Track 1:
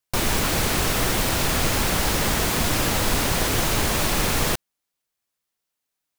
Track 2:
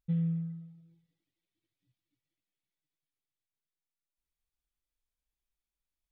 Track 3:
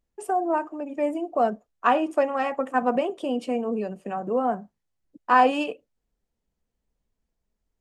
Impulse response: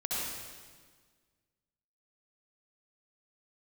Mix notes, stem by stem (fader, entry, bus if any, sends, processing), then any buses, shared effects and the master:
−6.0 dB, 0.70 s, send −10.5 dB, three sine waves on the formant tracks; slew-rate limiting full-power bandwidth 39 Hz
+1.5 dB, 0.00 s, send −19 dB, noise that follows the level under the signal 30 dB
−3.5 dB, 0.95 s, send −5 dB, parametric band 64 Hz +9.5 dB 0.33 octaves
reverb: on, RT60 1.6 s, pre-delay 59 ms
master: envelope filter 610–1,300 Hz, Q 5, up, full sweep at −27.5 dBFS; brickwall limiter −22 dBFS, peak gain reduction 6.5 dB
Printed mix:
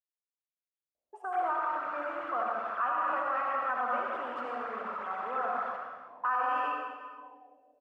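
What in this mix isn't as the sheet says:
stem 1: entry 0.70 s → 1.20 s
stem 2: muted
reverb return +8.0 dB

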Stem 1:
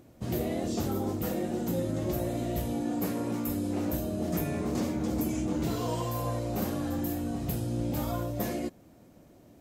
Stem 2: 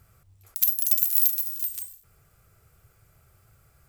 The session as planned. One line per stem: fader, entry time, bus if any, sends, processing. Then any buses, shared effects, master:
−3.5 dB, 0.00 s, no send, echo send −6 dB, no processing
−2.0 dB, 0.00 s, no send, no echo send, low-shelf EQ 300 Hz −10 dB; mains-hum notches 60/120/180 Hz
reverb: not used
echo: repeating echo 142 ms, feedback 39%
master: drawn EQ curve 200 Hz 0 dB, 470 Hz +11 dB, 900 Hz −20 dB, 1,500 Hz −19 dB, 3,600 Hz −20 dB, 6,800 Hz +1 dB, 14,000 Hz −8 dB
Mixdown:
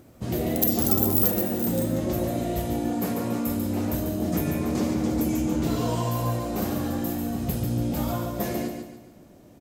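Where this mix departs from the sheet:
stem 1 −3.5 dB → +3.5 dB
master: missing drawn EQ curve 200 Hz 0 dB, 470 Hz +11 dB, 900 Hz −20 dB, 1,500 Hz −19 dB, 3,600 Hz −20 dB, 6,800 Hz +1 dB, 14,000 Hz −8 dB

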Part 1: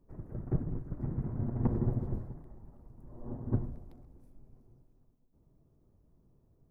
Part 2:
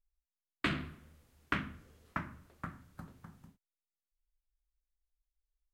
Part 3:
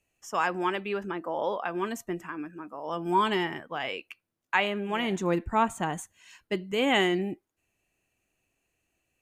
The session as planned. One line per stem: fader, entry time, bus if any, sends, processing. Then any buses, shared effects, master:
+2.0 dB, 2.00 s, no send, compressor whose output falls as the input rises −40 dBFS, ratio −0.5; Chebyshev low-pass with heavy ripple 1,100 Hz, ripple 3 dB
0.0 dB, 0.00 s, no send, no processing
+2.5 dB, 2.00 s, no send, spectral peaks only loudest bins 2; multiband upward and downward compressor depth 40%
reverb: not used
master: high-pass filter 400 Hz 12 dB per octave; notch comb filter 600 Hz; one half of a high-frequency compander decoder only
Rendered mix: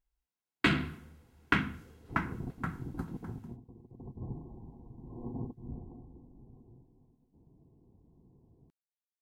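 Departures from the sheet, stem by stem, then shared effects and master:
stem 2 0.0 dB → +7.5 dB
stem 3: muted
master: missing high-pass filter 400 Hz 12 dB per octave

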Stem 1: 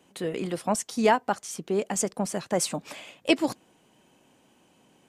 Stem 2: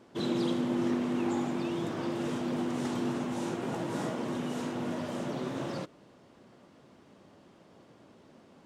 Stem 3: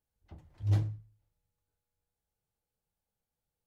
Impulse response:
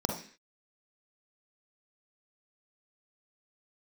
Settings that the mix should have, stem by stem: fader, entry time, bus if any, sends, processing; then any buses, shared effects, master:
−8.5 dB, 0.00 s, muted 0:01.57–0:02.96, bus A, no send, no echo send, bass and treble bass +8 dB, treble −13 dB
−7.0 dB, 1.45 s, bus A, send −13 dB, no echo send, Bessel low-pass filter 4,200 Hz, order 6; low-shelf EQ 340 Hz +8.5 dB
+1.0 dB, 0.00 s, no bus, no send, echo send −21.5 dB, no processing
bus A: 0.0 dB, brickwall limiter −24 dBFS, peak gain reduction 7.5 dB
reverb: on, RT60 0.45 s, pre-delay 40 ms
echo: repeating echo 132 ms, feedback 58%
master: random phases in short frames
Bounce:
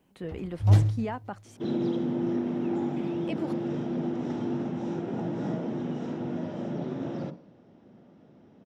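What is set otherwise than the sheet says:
stem 3 +1.0 dB → +9.0 dB
master: missing random phases in short frames

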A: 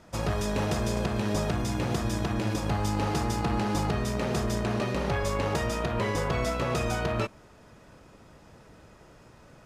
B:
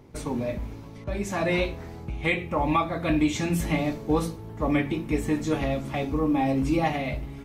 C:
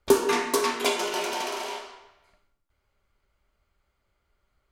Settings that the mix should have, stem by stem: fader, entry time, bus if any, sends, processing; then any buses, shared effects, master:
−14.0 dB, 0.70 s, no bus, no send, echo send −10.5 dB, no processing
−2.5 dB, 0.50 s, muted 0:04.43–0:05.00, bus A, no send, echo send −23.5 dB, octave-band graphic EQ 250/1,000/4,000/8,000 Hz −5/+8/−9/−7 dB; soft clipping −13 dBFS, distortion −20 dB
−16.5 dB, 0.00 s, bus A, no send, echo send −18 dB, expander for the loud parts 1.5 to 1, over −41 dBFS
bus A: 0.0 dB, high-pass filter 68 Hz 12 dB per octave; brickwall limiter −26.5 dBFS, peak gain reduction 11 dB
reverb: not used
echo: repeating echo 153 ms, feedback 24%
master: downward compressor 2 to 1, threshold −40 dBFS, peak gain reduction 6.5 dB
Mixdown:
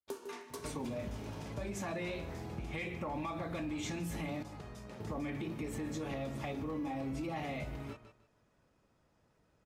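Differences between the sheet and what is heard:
stem A −14.0 dB → −20.0 dB
stem B: missing octave-band graphic EQ 250/1,000/4,000/8,000 Hz −5/+8/−9/−7 dB

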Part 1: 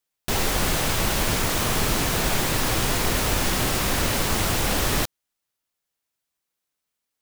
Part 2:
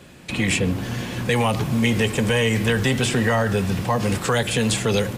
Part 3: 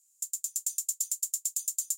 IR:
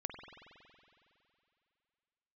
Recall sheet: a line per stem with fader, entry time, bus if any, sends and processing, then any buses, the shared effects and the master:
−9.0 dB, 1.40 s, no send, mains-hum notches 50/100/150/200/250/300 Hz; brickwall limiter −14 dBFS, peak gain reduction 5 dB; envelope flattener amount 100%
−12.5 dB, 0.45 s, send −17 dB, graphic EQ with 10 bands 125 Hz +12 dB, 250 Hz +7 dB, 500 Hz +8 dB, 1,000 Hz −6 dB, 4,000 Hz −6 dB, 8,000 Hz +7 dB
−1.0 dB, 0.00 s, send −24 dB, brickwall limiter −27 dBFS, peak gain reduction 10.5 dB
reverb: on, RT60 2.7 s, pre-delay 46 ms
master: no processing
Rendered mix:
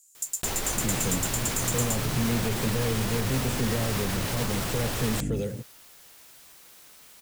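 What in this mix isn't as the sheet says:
stem 1: entry 1.40 s → 0.15 s
stem 2 −12.5 dB → −19.0 dB
stem 3 −1.0 dB → +8.0 dB

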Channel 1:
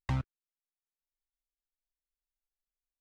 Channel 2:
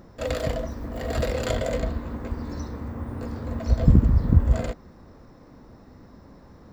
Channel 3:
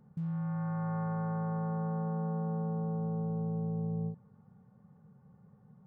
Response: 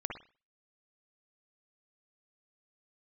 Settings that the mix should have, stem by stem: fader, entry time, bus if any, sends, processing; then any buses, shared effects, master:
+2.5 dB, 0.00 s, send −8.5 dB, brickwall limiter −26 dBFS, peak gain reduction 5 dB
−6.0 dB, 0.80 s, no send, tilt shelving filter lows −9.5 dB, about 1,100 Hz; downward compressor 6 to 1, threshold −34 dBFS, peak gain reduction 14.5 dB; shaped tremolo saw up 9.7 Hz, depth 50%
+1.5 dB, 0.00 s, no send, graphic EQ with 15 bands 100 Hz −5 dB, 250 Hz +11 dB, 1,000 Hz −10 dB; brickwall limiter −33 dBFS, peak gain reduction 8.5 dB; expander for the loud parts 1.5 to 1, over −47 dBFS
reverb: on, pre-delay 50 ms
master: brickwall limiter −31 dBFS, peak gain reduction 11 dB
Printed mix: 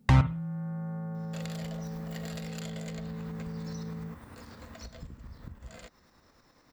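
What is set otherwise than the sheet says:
stem 1 +2.5 dB → +12.5 dB
stem 2: entry 0.80 s → 1.15 s
master: missing brickwall limiter −31 dBFS, peak gain reduction 11 dB

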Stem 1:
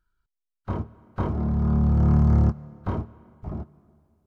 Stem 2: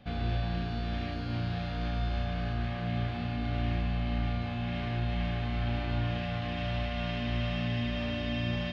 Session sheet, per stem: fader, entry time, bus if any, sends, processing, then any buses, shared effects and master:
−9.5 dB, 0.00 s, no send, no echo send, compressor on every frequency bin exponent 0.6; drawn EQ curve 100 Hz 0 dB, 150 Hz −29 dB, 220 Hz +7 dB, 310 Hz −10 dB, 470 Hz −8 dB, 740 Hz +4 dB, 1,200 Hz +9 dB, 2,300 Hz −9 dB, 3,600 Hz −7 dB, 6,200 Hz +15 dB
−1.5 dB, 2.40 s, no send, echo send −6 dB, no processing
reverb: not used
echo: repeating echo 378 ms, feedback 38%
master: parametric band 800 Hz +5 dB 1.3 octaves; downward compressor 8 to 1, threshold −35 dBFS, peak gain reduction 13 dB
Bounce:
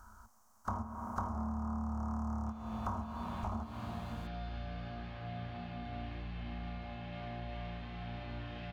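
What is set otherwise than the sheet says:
stem 1 −9.5 dB → −3.0 dB
stem 2 −1.5 dB → −12.0 dB

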